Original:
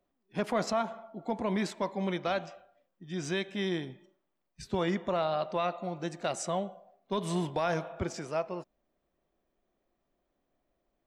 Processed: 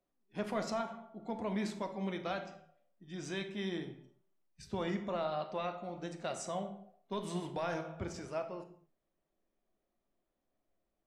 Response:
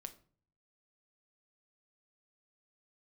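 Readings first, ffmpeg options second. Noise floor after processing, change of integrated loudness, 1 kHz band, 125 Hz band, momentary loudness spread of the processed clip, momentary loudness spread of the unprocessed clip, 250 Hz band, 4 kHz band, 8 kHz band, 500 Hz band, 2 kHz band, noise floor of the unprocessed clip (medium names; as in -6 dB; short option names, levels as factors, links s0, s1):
-85 dBFS, -6.0 dB, -6.5 dB, -6.5 dB, 12 LU, 9 LU, -5.5 dB, -6.5 dB, -6.5 dB, -6.5 dB, -6.5 dB, -81 dBFS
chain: -filter_complex "[1:a]atrim=start_sample=2205,afade=t=out:st=0.22:d=0.01,atrim=end_sample=10143,asetrate=27342,aresample=44100[s0];[0:a][s0]afir=irnorm=-1:irlink=0,volume=0.631"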